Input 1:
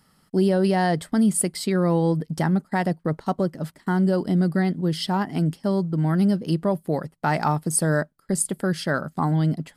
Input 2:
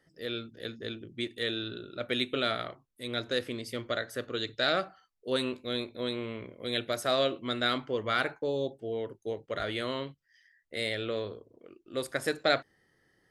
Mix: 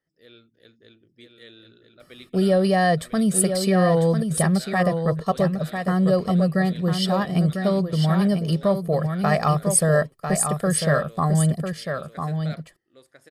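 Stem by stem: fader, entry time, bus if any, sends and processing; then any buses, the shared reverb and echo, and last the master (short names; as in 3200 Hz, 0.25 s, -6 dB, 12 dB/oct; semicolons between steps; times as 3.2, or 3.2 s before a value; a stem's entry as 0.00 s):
+0.5 dB, 2.00 s, no send, echo send -6.5 dB, comb 1.7 ms, depth 79%
-14.5 dB, 0.00 s, no send, echo send -4.5 dB, dry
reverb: off
echo: echo 0.998 s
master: dry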